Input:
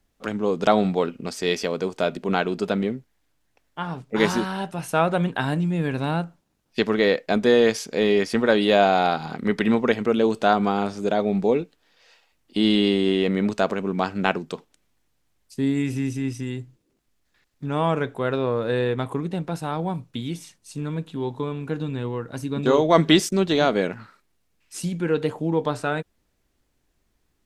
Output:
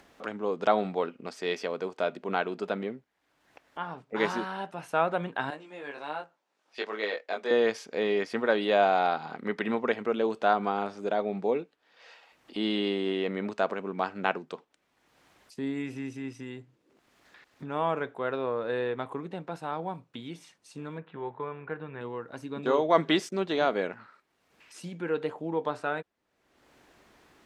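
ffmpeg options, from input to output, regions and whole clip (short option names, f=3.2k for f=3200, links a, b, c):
-filter_complex "[0:a]asettb=1/sr,asplit=3[a][b][c];[a]atrim=end=5.504[d];[b]atrim=start=5.5:end=7.51,asetpts=PTS-STARTPTS,afade=t=in:d=0.004:c=qsin,afade=t=out:st=2.006:d=0.004:c=qsin,highshelf=f=5.8k:g=8,flanger=delay=19:depth=2.3:speed=1.3,highpass=410,lowpass=7.4k[e];[c]atrim=start=7.506[f];[d][e]acrossfade=d=0.004:c1=hsin:c2=qsin[g];[g][f]acrossfade=d=0.004:c1=qsin:c2=hsin,asettb=1/sr,asplit=3[h][i][j];[h]atrim=end=20.984[k];[i]atrim=start=20.98:end=22.01,asetpts=PTS-STARTPTS,afade=t=in:d=0.004:c=qsin,afade=t=out:st=1.026:d=0.004:c=qsin,lowpass=f=1.9k:t=q:w=1.7,equalizer=f=270:w=4.4:g=-10[l];[j]atrim=start=22.006[m];[k][l]acrossfade=d=0.004:c1=hsin:c2=qsin[n];[n][m]acrossfade=d=0.004:c1=qsin:c2=hsin,highpass=f=810:p=1,acompressor=mode=upward:threshold=-35dB:ratio=2.5,lowpass=f=1.3k:p=1"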